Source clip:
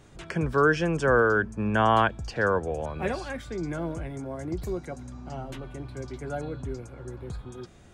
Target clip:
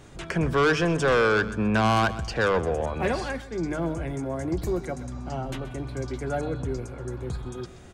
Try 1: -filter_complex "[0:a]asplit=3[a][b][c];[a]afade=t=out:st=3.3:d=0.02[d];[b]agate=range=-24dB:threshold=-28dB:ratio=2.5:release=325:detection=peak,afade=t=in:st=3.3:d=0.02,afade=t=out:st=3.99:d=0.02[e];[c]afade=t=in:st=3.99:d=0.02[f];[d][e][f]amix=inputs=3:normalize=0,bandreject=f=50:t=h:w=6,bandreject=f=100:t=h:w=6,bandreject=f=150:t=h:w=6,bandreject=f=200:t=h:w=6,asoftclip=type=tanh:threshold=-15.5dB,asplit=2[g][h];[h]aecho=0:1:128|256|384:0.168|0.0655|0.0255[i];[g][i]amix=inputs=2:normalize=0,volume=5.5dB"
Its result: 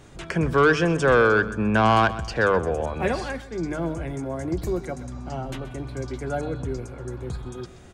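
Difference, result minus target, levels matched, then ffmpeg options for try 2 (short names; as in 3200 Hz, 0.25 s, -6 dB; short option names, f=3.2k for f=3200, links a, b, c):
soft clip: distortion -7 dB
-filter_complex "[0:a]asplit=3[a][b][c];[a]afade=t=out:st=3.3:d=0.02[d];[b]agate=range=-24dB:threshold=-28dB:ratio=2.5:release=325:detection=peak,afade=t=in:st=3.3:d=0.02,afade=t=out:st=3.99:d=0.02[e];[c]afade=t=in:st=3.99:d=0.02[f];[d][e][f]amix=inputs=3:normalize=0,bandreject=f=50:t=h:w=6,bandreject=f=100:t=h:w=6,bandreject=f=150:t=h:w=6,bandreject=f=200:t=h:w=6,asoftclip=type=tanh:threshold=-22.5dB,asplit=2[g][h];[h]aecho=0:1:128|256|384:0.168|0.0655|0.0255[i];[g][i]amix=inputs=2:normalize=0,volume=5.5dB"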